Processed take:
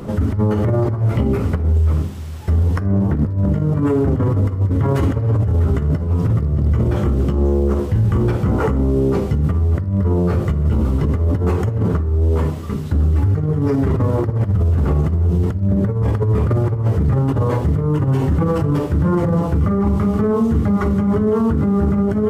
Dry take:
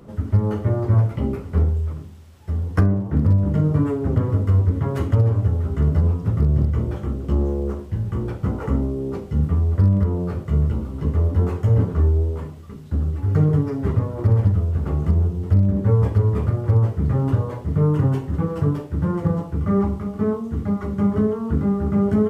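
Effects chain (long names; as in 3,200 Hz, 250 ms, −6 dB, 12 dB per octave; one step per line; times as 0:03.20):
compressor whose output falls as the input rises −21 dBFS, ratio −0.5
convolution reverb RT60 1.6 s, pre-delay 9 ms, DRR 16.5 dB
boost into a limiter +19.5 dB
level −8.5 dB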